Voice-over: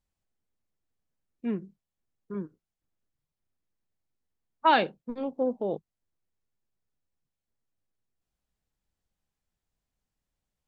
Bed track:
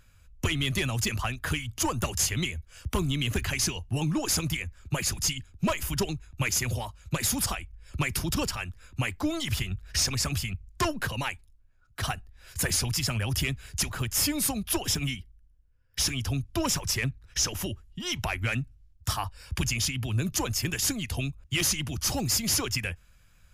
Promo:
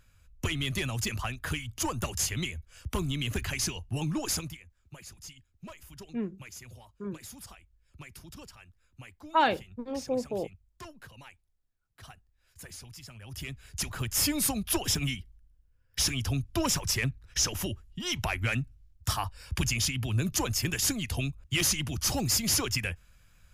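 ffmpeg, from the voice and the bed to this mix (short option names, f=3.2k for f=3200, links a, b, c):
-filter_complex "[0:a]adelay=4700,volume=-2.5dB[a];[1:a]volume=15dB,afade=t=out:st=4.31:d=0.27:silence=0.16788,afade=t=in:st=13.21:d=1.07:silence=0.11885[b];[a][b]amix=inputs=2:normalize=0"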